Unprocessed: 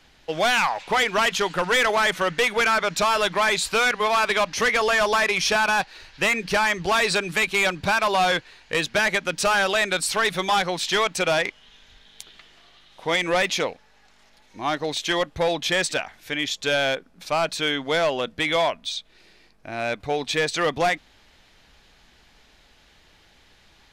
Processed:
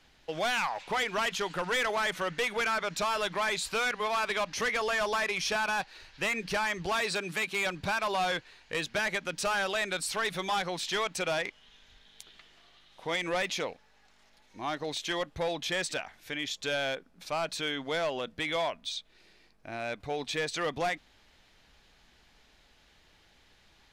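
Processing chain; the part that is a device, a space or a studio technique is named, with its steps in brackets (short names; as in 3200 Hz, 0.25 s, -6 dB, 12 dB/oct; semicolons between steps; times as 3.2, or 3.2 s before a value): 7.01–7.66 HPF 120 Hz 12 dB/oct; clipper into limiter (hard clip -15.5 dBFS, distortion -41 dB; limiter -18.5 dBFS, peak gain reduction 3 dB); gain -6.5 dB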